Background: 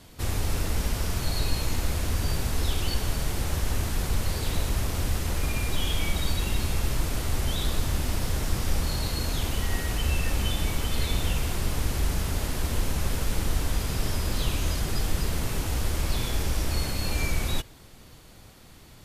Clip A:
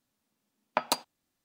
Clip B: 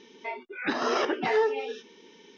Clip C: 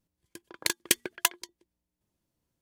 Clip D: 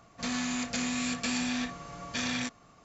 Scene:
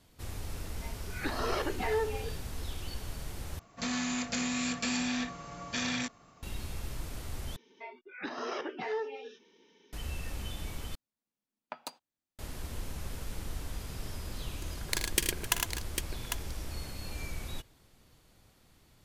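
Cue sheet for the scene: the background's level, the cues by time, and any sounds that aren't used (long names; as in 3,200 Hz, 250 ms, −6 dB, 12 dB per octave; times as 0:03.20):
background −12.5 dB
0:00.57: mix in B −17.5 dB + automatic gain control
0:03.59: overwrite with D −1 dB
0:07.56: overwrite with B −10.5 dB
0:10.95: overwrite with A −14.5 dB
0:14.27: mix in C −5 dB + multi-tap delay 46/58/79/108/262/800 ms −12.5/−20/−10.5/−4.5/−17/−7 dB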